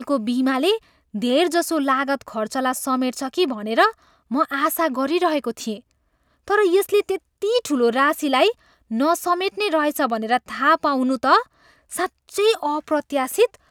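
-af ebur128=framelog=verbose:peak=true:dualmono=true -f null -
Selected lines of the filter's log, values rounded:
Integrated loudness:
  I:         -17.8 LUFS
  Threshold: -28.1 LUFS
Loudness range:
  LRA:         1.8 LU
  Threshold: -38.1 LUFS
  LRA low:   -19.0 LUFS
  LRA high:  -17.1 LUFS
True peak:
  Peak:       -3.4 dBFS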